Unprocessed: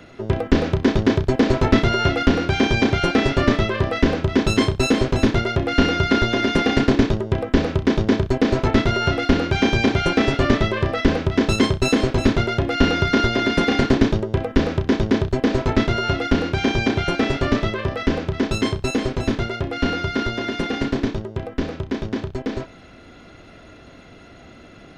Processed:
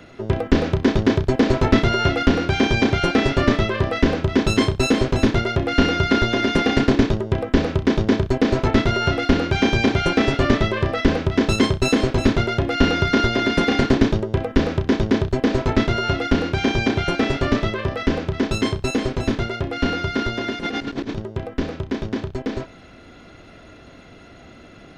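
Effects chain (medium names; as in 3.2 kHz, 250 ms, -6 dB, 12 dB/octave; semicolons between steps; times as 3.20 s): 20.59–21.19 s: compressor with a negative ratio -26 dBFS, ratio -0.5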